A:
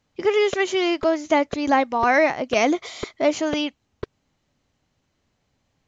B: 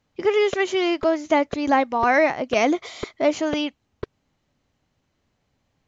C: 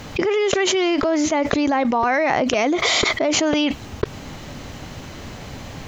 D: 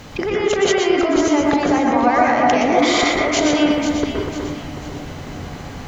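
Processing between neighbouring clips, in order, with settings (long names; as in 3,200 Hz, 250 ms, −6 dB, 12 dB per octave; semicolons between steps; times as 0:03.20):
high-shelf EQ 4,500 Hz −4.5 dB
envelope flattener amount 100%; level −3.5 dB
delay that swaps between a low-pass and a high-pass 247 ms, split 2,100 Hz, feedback 64%, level −5 dB; dense smooth reverb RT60 0.55 s, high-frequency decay 0.25×, pre-delay 110 ms, DRR −1.5 dB; level −2.5 dB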